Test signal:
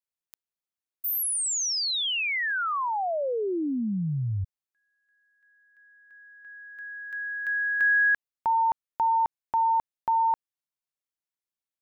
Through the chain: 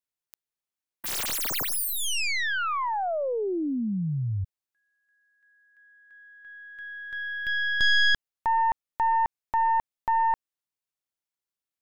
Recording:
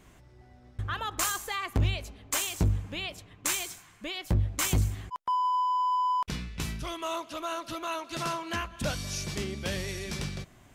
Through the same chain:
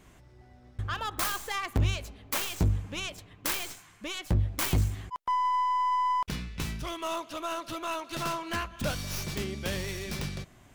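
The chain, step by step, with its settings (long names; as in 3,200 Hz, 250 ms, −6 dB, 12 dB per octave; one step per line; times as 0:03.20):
stylus tracing distortion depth 0.24 ms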